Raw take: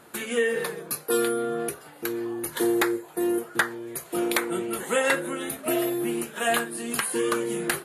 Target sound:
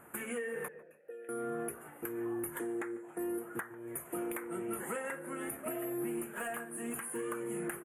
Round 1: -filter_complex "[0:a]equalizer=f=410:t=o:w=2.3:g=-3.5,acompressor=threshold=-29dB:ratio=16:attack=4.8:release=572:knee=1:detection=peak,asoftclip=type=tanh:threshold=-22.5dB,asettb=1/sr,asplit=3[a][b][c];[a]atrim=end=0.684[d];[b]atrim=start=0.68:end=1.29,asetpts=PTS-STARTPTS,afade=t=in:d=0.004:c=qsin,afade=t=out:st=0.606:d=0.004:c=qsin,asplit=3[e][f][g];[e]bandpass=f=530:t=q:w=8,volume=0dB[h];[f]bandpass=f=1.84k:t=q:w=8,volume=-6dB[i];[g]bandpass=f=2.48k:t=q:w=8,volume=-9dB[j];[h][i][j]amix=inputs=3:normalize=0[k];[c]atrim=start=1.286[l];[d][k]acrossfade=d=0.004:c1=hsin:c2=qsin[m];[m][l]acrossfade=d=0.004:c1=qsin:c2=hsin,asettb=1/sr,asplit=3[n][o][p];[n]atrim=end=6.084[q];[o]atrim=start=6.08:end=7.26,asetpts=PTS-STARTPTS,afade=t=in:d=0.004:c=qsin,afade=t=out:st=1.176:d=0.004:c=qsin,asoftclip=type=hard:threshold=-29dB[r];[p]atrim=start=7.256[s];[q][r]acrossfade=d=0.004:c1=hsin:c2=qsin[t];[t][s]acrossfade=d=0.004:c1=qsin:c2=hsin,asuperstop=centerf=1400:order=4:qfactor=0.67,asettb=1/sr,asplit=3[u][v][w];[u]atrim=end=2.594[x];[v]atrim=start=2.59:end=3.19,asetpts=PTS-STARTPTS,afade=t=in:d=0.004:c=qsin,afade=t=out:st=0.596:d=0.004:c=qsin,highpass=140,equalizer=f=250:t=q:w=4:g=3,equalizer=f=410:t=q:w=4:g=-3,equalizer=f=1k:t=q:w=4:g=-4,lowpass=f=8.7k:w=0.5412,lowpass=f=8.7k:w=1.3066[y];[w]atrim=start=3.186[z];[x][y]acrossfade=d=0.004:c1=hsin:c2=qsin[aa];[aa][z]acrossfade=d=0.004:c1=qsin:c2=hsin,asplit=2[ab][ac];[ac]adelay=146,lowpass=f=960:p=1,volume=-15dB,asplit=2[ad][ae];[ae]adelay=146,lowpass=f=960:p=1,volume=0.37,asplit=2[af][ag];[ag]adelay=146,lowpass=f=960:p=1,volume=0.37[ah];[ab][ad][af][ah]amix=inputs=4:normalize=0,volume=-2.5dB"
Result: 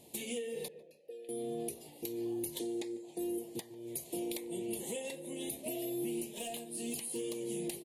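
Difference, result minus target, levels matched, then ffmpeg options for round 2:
4000 Hz band +13.0 dB
-filter_complex "[0:a]equalizer=f=410:t=o:w=2.3:g=-3.5,acompressor=threshold=-29dB:ratio=16:attack=4.8:release=572:knee=1:detection=peak,asoftclip=type=tanh:threshold=-22.5dB,asettb=1/sr,asplit=3[a][b][c];[a]atrim=end=0.684[d];[b]atrim=start=0.68:end=1.29,asetpts=PTS-STARTPTS,afade=t=in:d=0.004:c=qsin,afade=t=out:st=0.606:d=0.004:c=qsin,asplit=3[e][f][g];[e]bandpass=f=530:t=q:w=8,volume=0dB[h];[f]bandpass=f=1.84k:t=q:w=8,volume=-6dB[i];[g]bandpass=f=2.48k:t=q:w=8,volume=-9dB[j];[h][i][j]amix=inputs=3:normalize=0[k];[c]atrim=start=1.286[l];[d][k]acrossfade=d=0.004:c1=hsin:c2=qsin[m];[m][l]acrossfade=d=0.004:c1=qsin:c2=hsin,asettb=1/sr,asplit=3[n][o][p];[n]atrim=end=6.084[q];[o]atrim=start=6.08:end=7.26,asetpts=PTS-STARTPTS,afade=t=in:d=0.004:c=qsin,afade=t=out:st=1.176:d=0.004:c=qsin,asoftclip=type=hard:threshold=-29dB[r];[p]atrim=start=7.256[s];[q][r]acrossfade=d=0.004:c1=hsin:c2=qsin[t];[t][s]acrossfade=d=0.004:c1=qsin:c2=hsin,asuperstop=centerf=4500:order=4:qfactor=0.67,asettb=1/sr,asplit=3[u][v][w];[u]atrim=end=2.594[x];[v]atrim=start=2.59:end=3.19,asetpts=PTS-STARTPTS,afade=t=in:d=0.004:c=qsin,afade=t=out:st=0.596:d=0.004:c=qsin,highpass=140,equalizer=f=250:t=q:w=4:g=3,equalizer=f=410:t=q:w=4:g=-3,equalizer=f=1k:t=q:w=4:g=-4,lowpass=f=8.7k:w=0.5412,lowpass=f=8.7k:w=1.3066[y];[w]atrim=start=3.186[z];[x][y]acrossfade=d=0.004:c1=hsin:c2=qsin[aa];[aa][z]acrossfade=d=0.004:c1=qsin:c2=hsin,asplit=2[ab][ac];[ac]adelay=146,lowpass=f=960:p=1,volume=-15dB,asplit=2[ad][ae];[ae]adelay=146,lowpass=f=960:p=1,volume=0.37,asplit=2[af][ag];[ag]adelay=146,lowpass=f=960:p=1,volume=0.37[ah];[ab][ad][af][ah]amix=inputs=4:normalize=0,volume=-2.5dB"

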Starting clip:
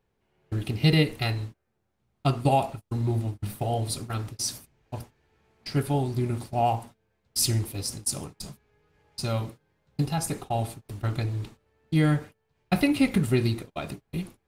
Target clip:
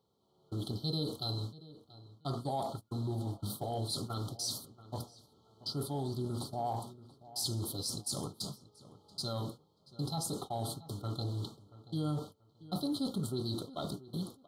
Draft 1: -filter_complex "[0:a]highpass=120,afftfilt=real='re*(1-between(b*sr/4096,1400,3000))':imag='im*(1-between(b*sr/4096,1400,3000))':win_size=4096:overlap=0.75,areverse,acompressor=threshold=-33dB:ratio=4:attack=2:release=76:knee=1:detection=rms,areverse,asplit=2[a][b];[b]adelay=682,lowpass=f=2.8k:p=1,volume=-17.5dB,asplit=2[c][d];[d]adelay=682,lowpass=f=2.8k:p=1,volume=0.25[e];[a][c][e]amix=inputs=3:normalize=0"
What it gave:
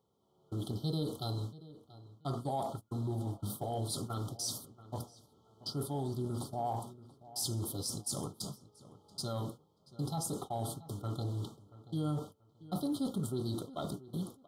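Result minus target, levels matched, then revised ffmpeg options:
4000 Hz band -4.0 dB
-filter_complex "[0:a]highpass=120,equalizer=f=4.2k:w=4.8:g=10.5,afftfilt=real='re*(1-between(b*sr/4096,1400,3000))':imag='im*(1-between(b*sr/4096,1400,3000))':win_size=4096:overlap=0.75,areverse,acompressor=threshold=-33dB:ratio=4:attack=2:release=76:knee=1:detection=rms,areverse,asplit=2[a][b];[b]adelay=682,lowpass=f=2.8k:p=1,volume=-17.5dB,asplit=2[c][d];[d]adelay=682,lowpass=f=2.8k:p=1,volume=0.25[e];[a][c][e]amix=inputs=3:normalize=0"

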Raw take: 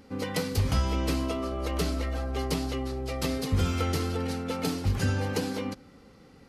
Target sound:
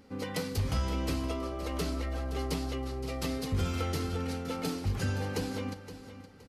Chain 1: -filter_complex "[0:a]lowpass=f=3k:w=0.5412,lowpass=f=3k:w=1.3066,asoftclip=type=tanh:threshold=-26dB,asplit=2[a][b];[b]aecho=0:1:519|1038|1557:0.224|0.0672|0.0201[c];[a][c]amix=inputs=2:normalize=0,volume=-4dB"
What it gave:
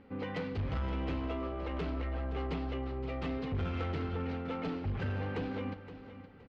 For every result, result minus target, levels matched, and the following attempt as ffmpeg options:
soft clip: distortion +14 dB; 4000 Hz band -6.0 dB
-filter_complex "[0:a]lowpass=f=3k:w=0.5412,lowpass=f=3k:w=1.3066,asoftclip=type=tanh:threshold=-15dB,asplit=2[a][b];[b]aecho=0:1:519|1038|1557:0.224|0.0672|0.0201[c];[a][c]amix=inputs=2:normalize=0,volume=-4dB"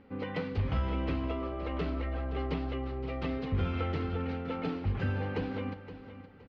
4000 Hz band -6.5 dB
-filter_complex "[0:a]asoftclip=type=tanh:threshold=-15dB,asplit=2[a][b];[b]aecho=0:1:519|1038|1557:0.224|0.0672|0.0201[c];[a][c]amix=inputs=2:normalize=0,volume=-4dB"

